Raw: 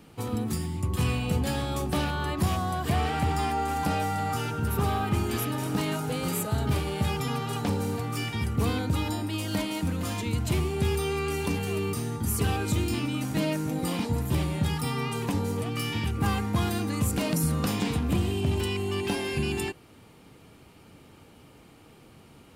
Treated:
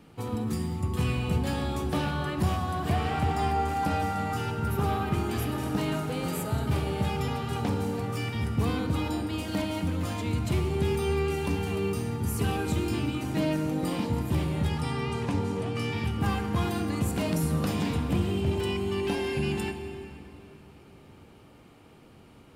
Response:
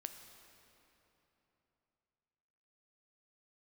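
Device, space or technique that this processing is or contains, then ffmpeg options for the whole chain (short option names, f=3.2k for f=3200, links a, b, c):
swimming-pool hall: -filter_complex "[0:a]asettb=1/sr,asplit=3[a][b][c];[a]atrim=end=14.694[d];[b]atrim=start=14.69:end=15.98,asetpts=PTS-STARTPTS,afade=t=in:d=0.004:c=qsin,afade=t=out:st=1.286:d=0.004:c=qsin,lowpass=9.1k[e];[c]atrim=start=15.976[f];[d][e]acrossfade=d=0.004:c1=hsin:c2=qsin[g];[g][f]acrossfade=d=0.004:c1=qsin:c2=hsin[h];[1:a]atrim=start_sample=2205[i];[h][i]afir=irnorm=-1:irlink=0,highshelf=f=4.3k:g=-6,volume=3dB"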